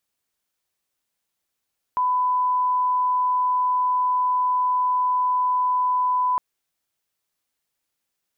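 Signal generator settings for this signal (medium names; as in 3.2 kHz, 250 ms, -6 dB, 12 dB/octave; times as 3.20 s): line-up tone -18 dBFS 4.41 s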